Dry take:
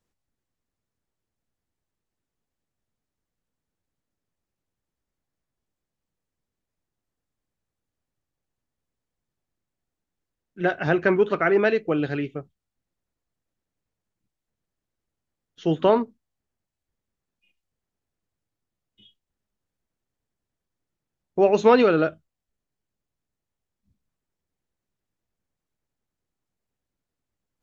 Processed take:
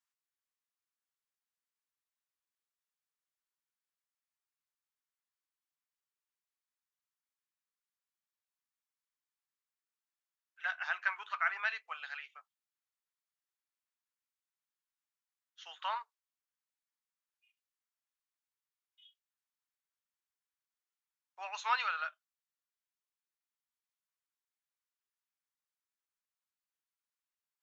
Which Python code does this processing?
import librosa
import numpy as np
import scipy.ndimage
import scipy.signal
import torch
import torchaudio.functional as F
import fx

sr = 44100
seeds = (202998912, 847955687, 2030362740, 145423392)

y = scipy.signal.sosfilt(scipy.signal.butter(6, 960.0, 'highpass', fs=sr, output='sos'), x)
y = y * librosa.db_to_amplitude(-7.0)